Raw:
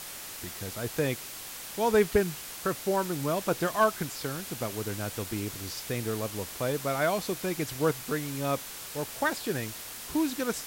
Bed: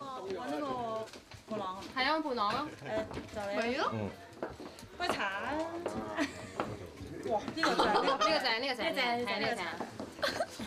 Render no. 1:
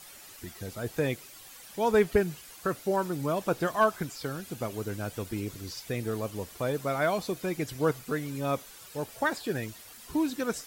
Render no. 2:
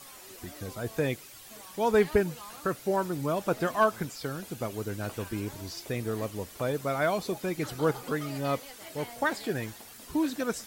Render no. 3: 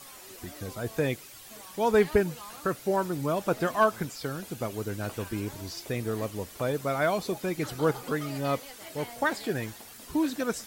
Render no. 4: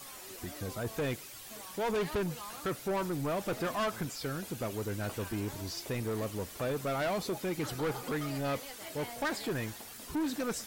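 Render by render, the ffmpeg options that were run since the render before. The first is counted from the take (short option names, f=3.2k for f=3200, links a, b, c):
-af "afftdn=nr=11:nf=-42"
-filter_complex "[1:a]volume=-14.5dB[a];[0:a][a]amix=inputs=2:normalize=0"
-af "volume=1dB"
-af "acrusher=bits=9:mix=0:aa=0.000001,asoftclip=type=tanh:threshold=-28.5dB"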